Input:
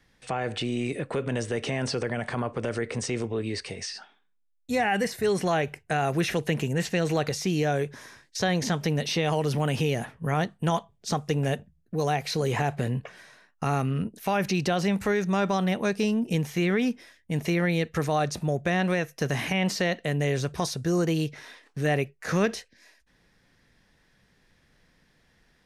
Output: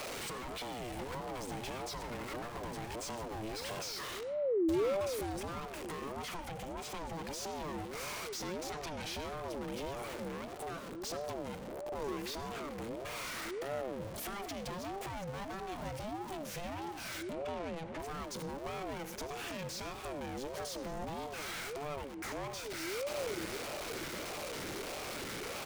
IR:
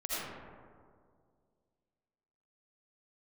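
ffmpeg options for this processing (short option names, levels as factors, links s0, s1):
-filter_complex "[0:a]aeval=exprs='val(0)+0.5*0.0299*sgn(val(0))':c=same,asettb=1/sr,asplit=3[s0][s1][s2];[s0]atrim=end=6.224[s3];[s1]atrim=start=6.22:end=7.13,asetpts=PTS-STARTPTS,afade=t=in:d=0.004:c=qsin,afade=t=out:st=0.906:d=0.004:c=qsin,equalizer=f=440:w=5.2:g=10.5[s4];[s2]atrim=start=7.126[s5];[s3][s4]acrossfade=d=0.004:c1=hsin:c2=qsin[s6];[s6][s5]acrossfade=d=0.004:c1=qsin:c2=hsin,acompressor=threshold=0.02:ratio=4,asettb=1/sr,asplit=3[s7][s8][s9];[s7]atrim=end=8.724[s10];[s8]atrim=start=8.72:end=9.13,asetpts=PTS-STARTPTS,afade=t=in:d=0.004:c=qsin,afade=t=out:st=0.406:d=0.004:c=qsin,asplit=2[s11][s12];[s12]highpass=f=720:p=1,volume=10,asoftclip=type=tanh:threshold=0.0501[s13];[s11][s13]amix=inputs=2:normalize=0,lowpass=f=3800:p=1,volume=0.501[s14];[s9]atrim=start=9.126[s15];[s10][s14]acrossfade=d=0.004:c1=hsin:c2=qsin[s16];[s16][s15]acrossfade=d=0.004:c1=qsin:c2=hsin,asettb=1/sr,asplit=3[s17][s18][s19];[s17]atrim=end=17.334[s20];[s18]atrim=start=17.33:end=17.99,asetpts=PTS-STARTPTS,afade=t=in:d=0.004:c=qsin,afade=t=out:st=0.656:d=0.004:c=qsin,adynamicsmooth=sensitivity=7.5:basefreq=1100[s21];[s19]atrim=start=17.986[s22];[s20][s21]acrossfade=d=0.004:c1=hsin:c2=qsin[s23];[s23][s22]acrossfade=d=0.004:c1=qsin:c2=hsin,asoftclip=type=tanh:threshold=0.0158,asplit=2[s24][s25];[s25]aresample=22050,aresample=44100[s26];[1:a]atrim=start_sample=2205[s27];[s26][s27]afir=irnorm=-1:irlink=0,volume=0.188[s28];[s24][s28]amix=inputs=2:normalize=0,aeval=exprs='val(0)*sin(2*PI*460*n/s+460*0.3/1.6*sin(2*PI*1.6*n/s))':c=same,volume=0.891"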